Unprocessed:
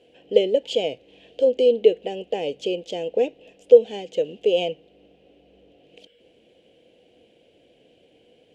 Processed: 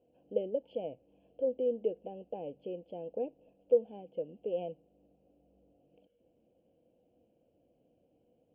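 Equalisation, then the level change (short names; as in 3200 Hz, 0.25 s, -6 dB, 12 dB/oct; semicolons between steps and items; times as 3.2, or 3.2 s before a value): running mean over 23 samples; air absorption 410 m; bell 410 Hz -8.5 dB 0.44 oct; -8.5 dB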